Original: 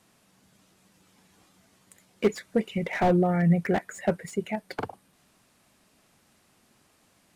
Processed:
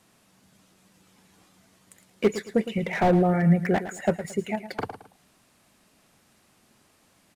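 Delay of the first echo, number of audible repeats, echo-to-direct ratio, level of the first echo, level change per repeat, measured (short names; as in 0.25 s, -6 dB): 0.111 s, 2, -12.0 dB, -12.5 dB, -10.0 dB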